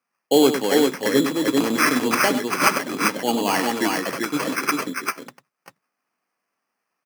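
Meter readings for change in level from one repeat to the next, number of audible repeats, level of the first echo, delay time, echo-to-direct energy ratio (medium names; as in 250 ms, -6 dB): no regular repeats, 2, -9.5 dB, 98 ms, -2.0 dB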